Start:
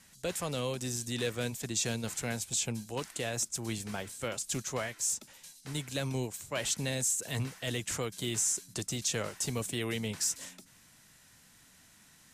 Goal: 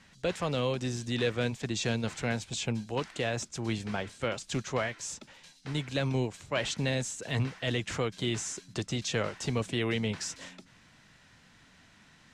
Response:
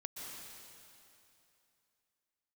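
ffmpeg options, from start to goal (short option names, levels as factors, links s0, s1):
-af "lowpass=3800,volume=1.68"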